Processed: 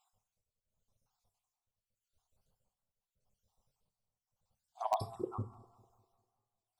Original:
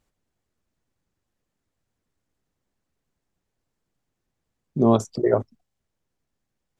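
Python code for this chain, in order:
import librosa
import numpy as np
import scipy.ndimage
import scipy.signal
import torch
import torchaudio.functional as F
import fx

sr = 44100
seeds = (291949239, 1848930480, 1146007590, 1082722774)

p1 = fx.spec_dropout(x, sr, seeds[0], share_pct=59)
p2 = p1 * (1.0 - 0.81 / 2.0 + 0.81 / 2.0 * np.cos(2.0 * np.pi * 0.85 * (np.arange(len(p1)) / sr)))
p3 = fx.rev_double_slope(p2, sr, seeds[1], early_s=0.56, late_s=2.0, knee_db=-18, drr_db=8.5)
p4 = fx.env_phaser(p3, sr, low_hz=310.0, high_hz=1400.0, full_db=-32.0)
p5 = (np.mod(10.0 ** (25.0 / 20.0) * p4 + 1.0, 2.0) - 1.0) / 10.0 ** (25.0 / 20.0)
p6 = p4 + (p5 * 10.0 ** (-10.0 / 20.0))
p7 = fx.echo_wet_lowpass(p6, sr, ms=200, feedback_pct=42, hz=3300.0, wet_db=-22.0)
p8 = fx.record_warp(p7, sr, rpm=33.33, depth_cents=100.0)
y = p8 * 10.0 ** (3.0 / 20.0)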